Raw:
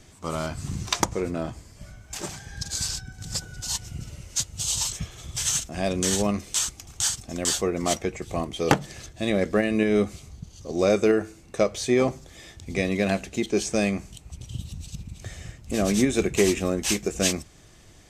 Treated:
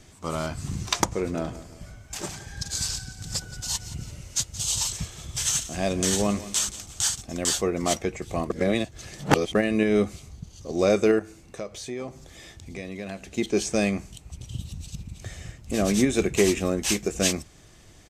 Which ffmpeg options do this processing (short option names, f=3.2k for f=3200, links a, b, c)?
-filter_complex "[0:a]asplit=3[a][b][c];[a]afade=t=out:st=1.27:d=0.02[d];[b]aecho=1:1:174|348|522|696:0.168|0.0705|0.0296|0.0124,afade=t=in:st=1.27:d=0.02,afade=t=out:st=7.2:d=0.02[e];[c]afade=t=in:st=7.2:d=0.02[f];[d][e][f]amix=inputs=3:normalize=0,asettb=1/sr,asplit=3[g][h][i];[g]atrim=end=11.194[j];[h]atrim=start=11.19:end=13.38,asetpts=PTS-STARTPTS,afade=t=in:d=0.004:c=qsin,afade=t=out:st=2.186:d=0.004:c=qsin,acompressor=threshold=-40dB:ratio=2:attack=3.2:release=140:knee=1:detection=peak[k];[i]atrim=start=13.376[l];[j][k]acrossfade=d=0.004:c1=hsin:c2=qsin[m];[m][l]acrossfade=d=0.004:c1=qsin:c2=hsin,asplit=3[n][o][p];[n]atrim=end=8.502[q];[o]atrim=start=8.498:end=9.552,asetpts=PTS-STARTPTS,areverse[r];[p]atrim=start=9.548[s];[q][r]acrossfade=d=0.004:c1=hsin:c2=hsin[t];[t][s]acrossfade=d=0.004:c1=hsin:c2=hsin"